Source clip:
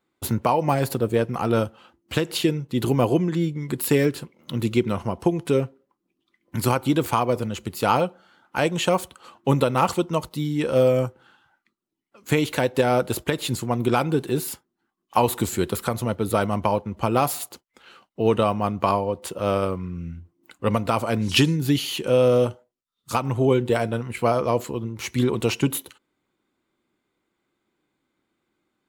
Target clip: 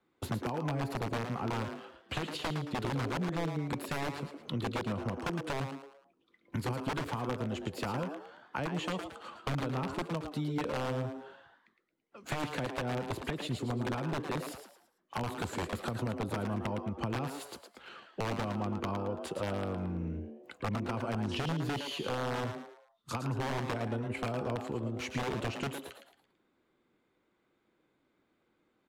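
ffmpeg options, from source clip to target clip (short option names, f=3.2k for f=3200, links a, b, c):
-filter_complex "[0:a]acrossover=split=300[a][b];[b]acompressor=threshold=-27dB:ratio=8[c];[a][c]amix=inputs=2:normalize=0,acrossover=split=140|1100|3600[d][e][f][g];[e]aeval=exprs='(mod(8.91*val(0)+1,2)-1)/8.91':c=same[h];[d][h][f][g]amix=inputs=4:normalize=0,acompressor=threshold=-35dB:ratio=3,aemphasis=mode=reproduction:type=50fm,asplit=5[i][j][k][l][m];[j]adelay=111,afreqshift=140,volume=-7.5dB[n];[k]adelay=222,afreqshift=280,volume=-16.4dB[o];[l]adelay=333,afreqshift=420,volume=-25.2dB[p];[m]adelay=444,afreqshift=560,volume=-34.1dB[q];[i][n][o][p][q]amix=inputs=5:normalize=0"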